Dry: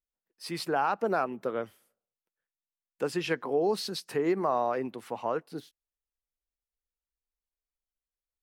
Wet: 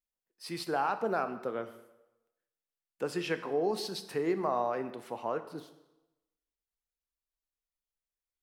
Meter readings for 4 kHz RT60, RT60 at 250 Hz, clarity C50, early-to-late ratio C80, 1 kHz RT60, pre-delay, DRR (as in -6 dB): 0.85 s, 0.90 s, 12.5 dB, 14.0 dB, 0.95 s, 16 ms, 10.0 dB